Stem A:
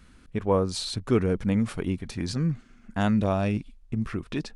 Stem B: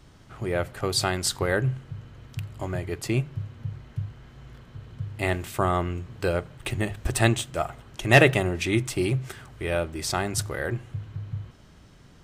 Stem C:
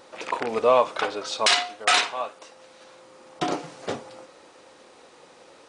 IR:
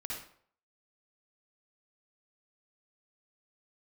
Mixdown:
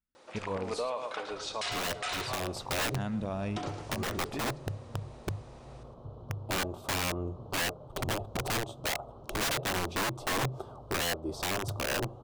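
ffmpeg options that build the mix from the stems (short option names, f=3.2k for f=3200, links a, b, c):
-filter_complex "[0:a]agate=range=-31dB:threshold=-45dB:ratio=16:detection=peak,volume=-8.5dB,asplit=3[a][b][c];[a]atrim=end=0.9,asetpts=PTS-STARTPTS,afade=t=out:st=0.896:d=0.004:c=hsin[d];[b]atrim=start=0.9:end=2.95,asetpts=PTS-STARTPTS,volume=0[e];[c]atrim=start=2.95,asetpts=PTS-STARTPTS,afade=t=in:d=0.004:c=hsin[f];[d][e][f]concat=n=3:v=0:a=1,asplit=2[g][h];[h]volume=-16.5dB[i];[1:a]firequalizer=gain_entry='entry(160,0);entry(580,13);entry(1200,4);entry(1800,-29);entry(3500,-8);entry(7300,-16)':delay=0.05:min_phase=1,acompressor=threshold=-22dB:ratio=2.5,aeval=exprs='(mod(11.9*val(0)+1,2)-1)/11.9':c=same,adelay=1300,volume=-4dB[j];[2:a]adelay=150,volume=-7.5dB,asplit=2[k][l];[l]volume=-11dB[m];[i][m]amix=inputs=2:normalize=0,aecho=0:1:109|218|327|436:1|0.29|0.0841|0.0244[n];[g][j][k][n]amix=inputs=4:normalize=0,alimiter=level_in=0.5dB:limit=-24dB:level=0:latency=1:release=143,volume=-0.5dB"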